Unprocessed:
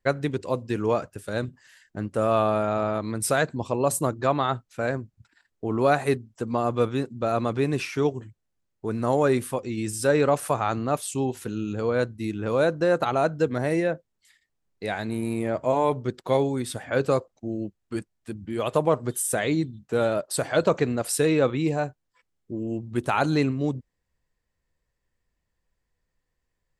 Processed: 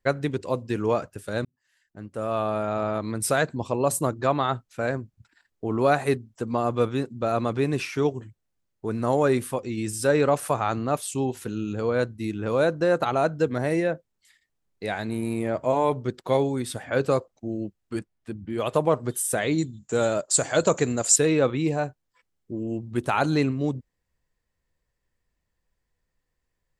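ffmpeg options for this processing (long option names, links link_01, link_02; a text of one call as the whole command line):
ffmpeg -i in.wav -filter_complex "[0:a]asettb=1/sr,asplit=3[link_01][link_02][link_03];[link_01]atrim=end=17.994[link_04];[link_02]atrim=start=17.99:end=18.58,asetpts=PTS-STARTPTS,afade=type=in:duration=0.004:curve=qsin,afade=type=out:start_time=0.586:duration=0.004:curve=qsin,aemphasis=mode=reproduction:type=cd[link_05];[link_03]atrim=start=18.576[link_06];[link_04][link_05]acrossfade=duration=0.004:curve1=hsin:curve2=qsin[link_07];[link_07][link_06]acrossfade=duration=0.004:curve1=qsin:curve2=hsin,asettb=1/sr,asplit=3[link_08][link_09][link_10];[link_08]atrim=end=19.584[link_11];[link_09]atrim=start=19.58:end=21.16,asetpts=PTS-STARTPTS,afade=type=in:duration=0.004:curve=qsin,afade=type=out:start_time=1.576:duration=0.004:curve=qsin,lowpass=frequency=7100:width_type=q:width=14[link_12];[link_10]atrim=start=21.156[link_13];[link_11][link_12]acrossfade=duration=0.004:curve1=hsin:curve2=qsin[link_14];[link_14][link_13]acrossfade=duration=0.004:curve1=qsin:curve2=hsin,asplit=2[link_15][link_16];[link_15]atrim=end=1.45,asetpts=PTS-STARTPTS,afade=type=out:start_time=1.446:duration=0.004:curve=hsin[link_17];[link_16]atrim=start=1.45,asetpts=PTS-STARTPTS,afade=type=in:duration=1.58[link_18];[link_17][link_18]concat=n=2:v=0:a=1" out.wav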